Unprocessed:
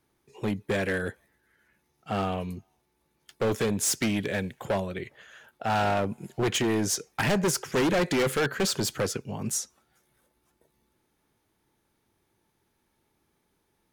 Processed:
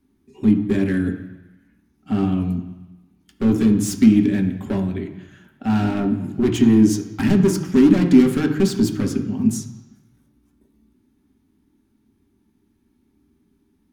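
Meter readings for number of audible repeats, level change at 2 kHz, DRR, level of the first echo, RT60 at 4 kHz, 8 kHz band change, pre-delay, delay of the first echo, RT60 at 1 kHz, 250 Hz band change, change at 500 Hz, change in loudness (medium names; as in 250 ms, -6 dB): no echo, -2.0 dB, 2.5 dB, no echo, 1.1 s, -3.0 dB, 3 ms, no echo, 1.1 s, +15.5 dB, +3.5 dB, +9.5 dB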